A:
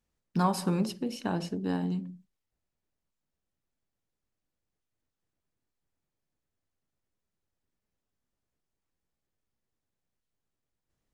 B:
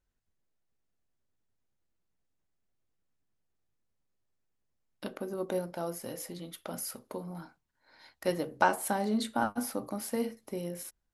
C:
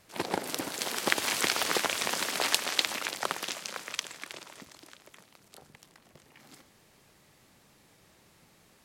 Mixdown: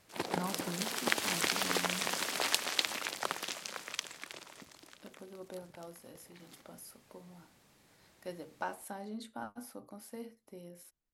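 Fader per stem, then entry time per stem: -12.5, -13.0, -4.0 dB; 0.00, 0.00, 0.00 s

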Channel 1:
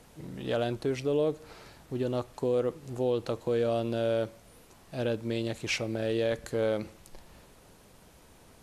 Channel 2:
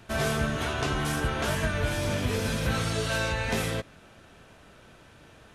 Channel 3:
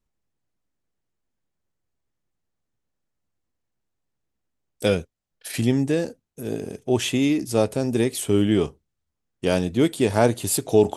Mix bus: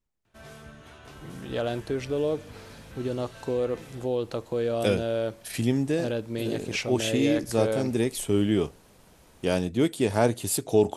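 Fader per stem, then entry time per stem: +0.5, -19.0, -4.0 dB; 1.05, 0.25, 0.00 s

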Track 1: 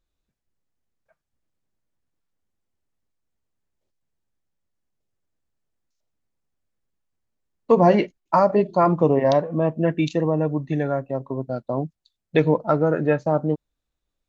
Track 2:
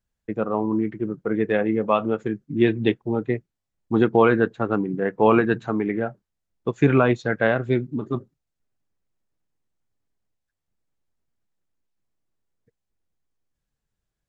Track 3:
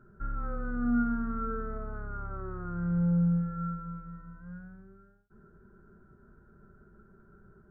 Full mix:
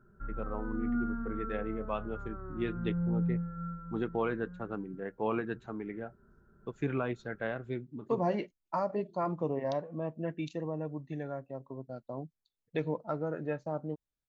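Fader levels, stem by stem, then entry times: -15.0, -15.5, -5.0 dB; 0.40, 0.00, 0.00 s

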